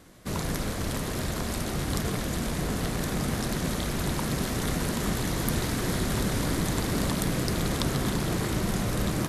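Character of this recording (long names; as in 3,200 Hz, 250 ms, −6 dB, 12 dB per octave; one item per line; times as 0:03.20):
background noise floor −32 dBFS
spectral slope −4.5 dB per octave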